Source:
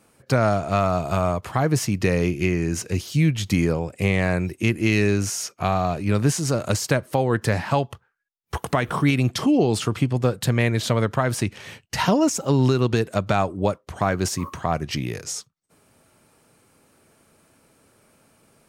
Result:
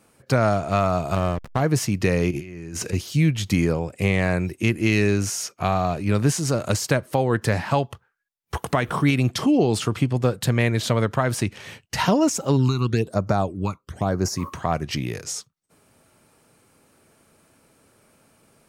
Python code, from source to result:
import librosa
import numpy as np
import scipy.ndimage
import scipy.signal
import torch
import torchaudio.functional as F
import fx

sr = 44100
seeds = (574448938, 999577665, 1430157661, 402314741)

y = fx.backlash(x, sr, play_db=-20.0, at=(1.15, 1.61))
y = fx.over_compress(y, sr, threshold_db=-33.0, ratio=-1.0, at=(2.31, 2.93))
y = fx.phaser_stages(y, sr, stages=12, low_hz=530.0, high_hz=3300.0, hz=1.0, feedback_pct=25, at=(12.56, 14.35), fade=0.02)